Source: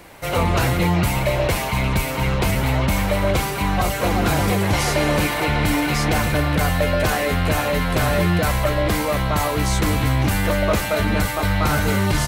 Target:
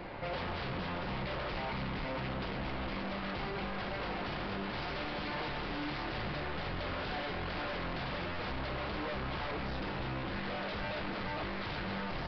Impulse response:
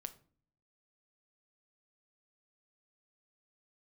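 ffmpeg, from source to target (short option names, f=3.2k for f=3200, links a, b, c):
-filter_complex "[0:a]highshelf=f=2.8k:g=-10,asplit=2[a][b];[b]aeval=exprs='0.355*sin(PI/2*5.62*val(0)/0.355)':c=same,volume=-6dB[c];[a][c]amix=inputs=2:normalize=0[d];[1:a]atrim=start_sample=2205,asetrate=48510,aresample=44100[e];[d][e]afir=irnorm=-1:irlink=0,aresample=11025,asoftclip=type=tanh:threshold=-16dB,aresample=44100,alimiter=limit=-24dB:level=0:latency=1,bandreject=f=48.89:t=h:w=4,bandreject=f=97.78:t=h:w=4,bandreject=f=146.67:t=h:w=4,volume=-8.5dB"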